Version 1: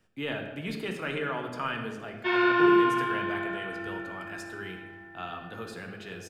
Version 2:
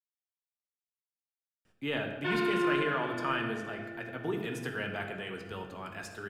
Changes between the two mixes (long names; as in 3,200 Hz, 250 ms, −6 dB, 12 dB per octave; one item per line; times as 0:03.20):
speech: entry +1.65 s
background: send −11.0 dB